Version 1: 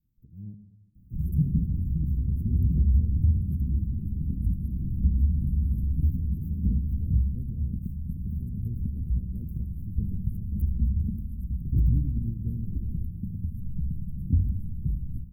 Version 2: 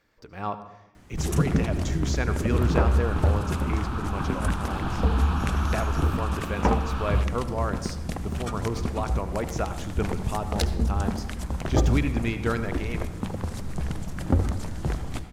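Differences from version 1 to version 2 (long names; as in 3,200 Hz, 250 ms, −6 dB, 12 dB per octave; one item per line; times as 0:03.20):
second sound −7.5 dB
master: remove inverse Chebyshev band-stop filter 950–4,600 Hz, stop band 80 dB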